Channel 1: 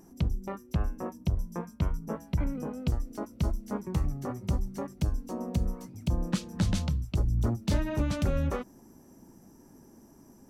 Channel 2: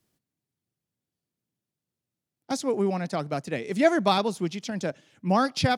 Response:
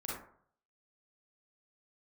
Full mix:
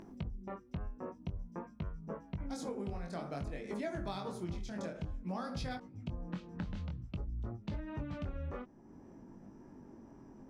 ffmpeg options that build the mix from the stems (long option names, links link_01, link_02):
-filter_complex "[0:a]lowpass=2600,acompressor=mode=upward:threshold=-41dB:ratio=2.5,volume=-2dB[link_01];[1:a]bandreject=frequency=2800:width=16,volume=-8dB,asplit=2[link_02][link_03];[link_03]volume=-7dB[link_04];[2:a]atrim=start_sample=2205[link_05];[link_04][link_05]afir=irnorm=-1:irlink=0[link_06];[link_01][link_02][link_06]amix=inputs=3:normalize=0,flanger=delay=19.5:depth=4.3:speed=0.52,acompressor=threshold=-37dB:ratio=5"